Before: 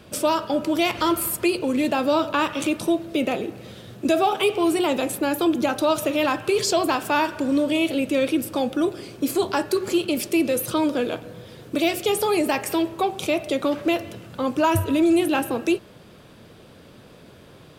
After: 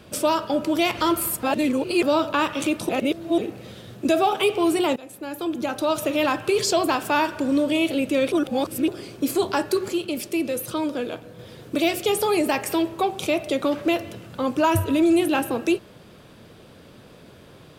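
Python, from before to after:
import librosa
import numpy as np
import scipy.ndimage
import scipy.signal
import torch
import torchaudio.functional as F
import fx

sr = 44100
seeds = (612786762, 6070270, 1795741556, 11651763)

y = fx.edit(x, sr, fx.reverse_span(start_s=1.43, length_s=0.6),
    fx.reverse_span(start_s=2.89, length_s=0.49),
    fx.fade_in_from(start_s=4.96, length_s=1.23, floor_db=-20.5),
    fx.reverse_span(start_s=8.32, length_s=0.56),
    fx.clip_gain(start_s=9.88, length_s=1.51, db=-4.0), tone=tone)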